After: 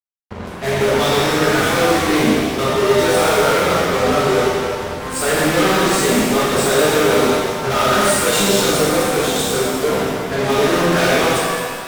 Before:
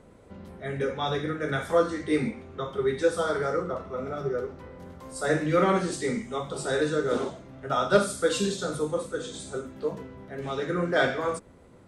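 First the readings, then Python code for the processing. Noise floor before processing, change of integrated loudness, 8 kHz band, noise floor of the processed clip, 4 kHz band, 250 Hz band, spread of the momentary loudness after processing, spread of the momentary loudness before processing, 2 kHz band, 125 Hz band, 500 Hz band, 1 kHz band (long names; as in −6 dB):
−53 dBFS, +12.5 dB, +18.5 dB, −28 dBFS, +17.5 dB, +12.0 dB, 6 LU, 14 LU, +13.5 dB, +11.0 dB, +11.0 dB, +13.5 dB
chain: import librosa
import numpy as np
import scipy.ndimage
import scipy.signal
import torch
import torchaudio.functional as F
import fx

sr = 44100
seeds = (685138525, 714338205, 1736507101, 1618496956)

y = fx.fuzz(x, sr, gain_db=41.0, gate_db=-41.0)
y = fx.rev_shimmer(y, sr, seeds[0], rt60_s=1.8, semitones=7, shimmer_db=-8, drr_db=-5.0)
y = y * 10.0 ** (-6.5 / 20.0)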